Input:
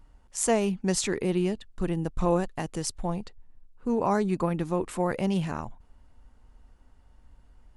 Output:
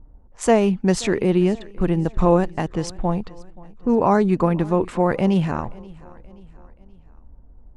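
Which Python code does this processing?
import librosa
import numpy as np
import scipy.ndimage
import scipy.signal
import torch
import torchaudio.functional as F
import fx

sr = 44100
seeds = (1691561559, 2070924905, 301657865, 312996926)

y = fx.env_lowpass(x, sr, base_hz=520.0, full_db=-25.5)
y = fx.lowpass(y, sr, hz=2400.0, slope=6)
y = fx.echo_feedback(y, sr, ms=528, feedback_pct=48, wet_db=-22.5)
y = y * 10.0 ** (8.5 / 20.0)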